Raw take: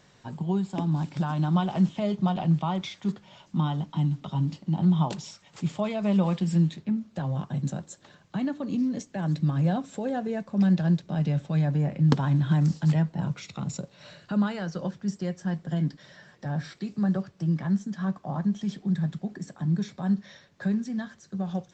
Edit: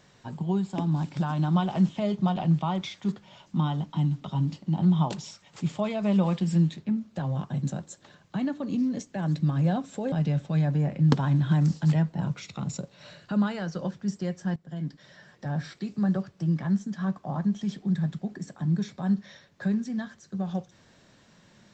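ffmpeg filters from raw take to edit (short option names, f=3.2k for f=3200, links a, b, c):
-filter_complex "[0:a]asplit=3[a][b][c];[a]atrim=end=10.122[d];[b]atrim=start=11.118:end=15.56,asetpts=PTS-STARTPTS,afade=t=out:st=4.438:d=0.004:c=hsin:silence=0.141254[e];[c]atrim=start=15.56,asetpts=PTS-STARTPTS,afade=t=in:d=0.99:c=qsin:silence=0.141254[f];[e][f]concat=n=2:v=0:a=1[g];[d][g]acrossfade=d=0.004:c1=hsin:c2=hsin"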